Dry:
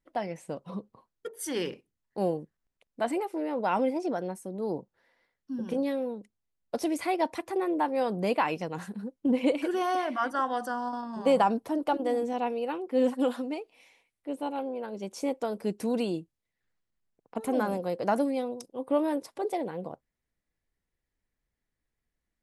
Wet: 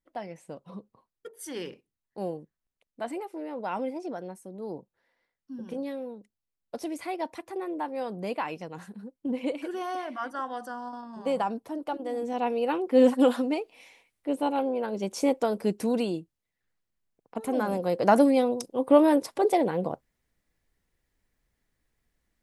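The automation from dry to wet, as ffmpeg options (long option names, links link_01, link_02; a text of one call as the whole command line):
ffmpeg -i in.wav -af "volume=14dB,afade=type=in:start_time=12.11:duration=0.67:silence=0.281838,afade=type=out:start_time=15.3:duration=0.89:silence=0.501187,afade=type=in:start_time=17.62:duration=0.64:silence=0.398107" out.wav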